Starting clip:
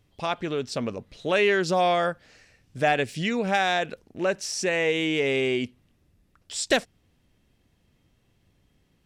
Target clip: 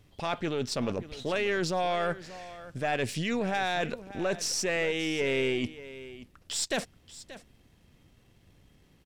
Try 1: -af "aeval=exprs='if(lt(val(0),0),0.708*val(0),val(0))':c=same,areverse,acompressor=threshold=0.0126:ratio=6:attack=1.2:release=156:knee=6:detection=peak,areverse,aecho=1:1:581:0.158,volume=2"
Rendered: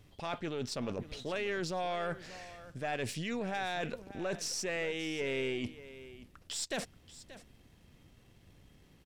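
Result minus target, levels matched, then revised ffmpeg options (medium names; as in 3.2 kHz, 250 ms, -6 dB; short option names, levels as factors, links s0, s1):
compression: peak gain reduction +6.5 dB
-af "aeval=exprs='if(lt(val(0),0),0.708*val(0),val(0))':c=same,areverse,acompressor=threshold=0.0316:ratio=6:attack=1.2:release=156:knee=6:detection=peak,areverse,aecho=1:1:581:0.158,volume=2"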